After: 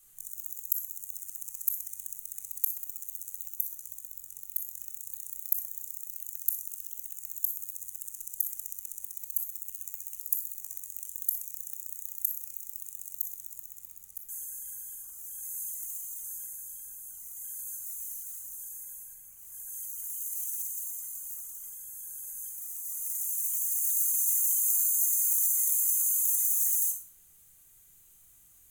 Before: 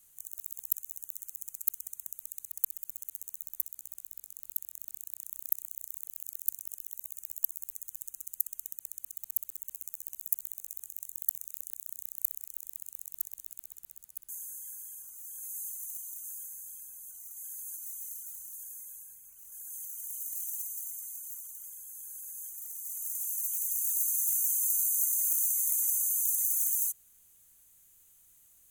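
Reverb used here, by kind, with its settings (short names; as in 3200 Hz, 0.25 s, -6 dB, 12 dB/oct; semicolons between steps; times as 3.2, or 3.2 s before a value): shoebox room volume 2100 m³, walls furnished, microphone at 3.7 m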